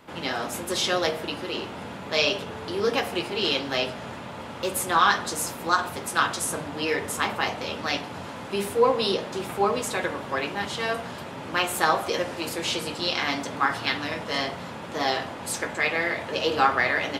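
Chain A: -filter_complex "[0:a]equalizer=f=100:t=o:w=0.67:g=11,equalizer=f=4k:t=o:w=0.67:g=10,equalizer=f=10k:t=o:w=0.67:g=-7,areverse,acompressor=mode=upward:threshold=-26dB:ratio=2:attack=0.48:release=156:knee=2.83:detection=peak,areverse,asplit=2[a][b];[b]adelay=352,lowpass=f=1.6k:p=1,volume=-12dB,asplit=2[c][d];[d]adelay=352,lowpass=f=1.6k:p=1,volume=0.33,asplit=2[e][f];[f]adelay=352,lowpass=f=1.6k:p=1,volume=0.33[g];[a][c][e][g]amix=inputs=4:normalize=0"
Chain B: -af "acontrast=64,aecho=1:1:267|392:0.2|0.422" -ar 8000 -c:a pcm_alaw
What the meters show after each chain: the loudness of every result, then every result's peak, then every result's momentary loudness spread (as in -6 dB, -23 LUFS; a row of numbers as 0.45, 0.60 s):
-23.5, -20.0 LUFS; -1.5, -2.5 dBFS; 10, 9 LU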